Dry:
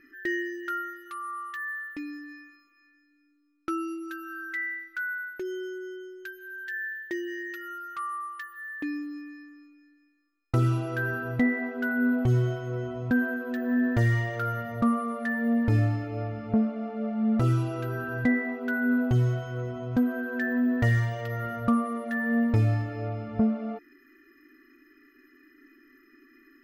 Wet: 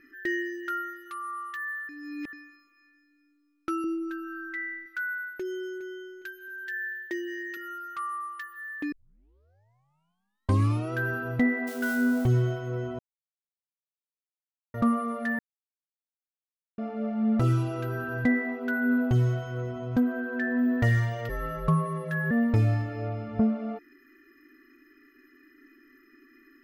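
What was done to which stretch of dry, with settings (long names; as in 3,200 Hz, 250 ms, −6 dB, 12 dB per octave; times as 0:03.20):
0:01.89–0:02.33: reverse
0:03.84–0:04.86: spectral tilt −3 dB per octave
0:05.39–0:05.83: delay throw 410 ms, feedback 30%, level −11.5 dB
0:06.48–0:07.57: high-pass filter 230 Hz
0:08.92: tape start 2.01 s
0:11.67–0:12.28: spike at every zero crossing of −31 dBFS
0:12.99–0:14.74: silence
0:15.39–0:16.78: silence
0:20.00–0:20.59: high-shelf EQ 6,400 Hz −11 dB
0:21.29–0:22.31: frequency shifter −72 Hz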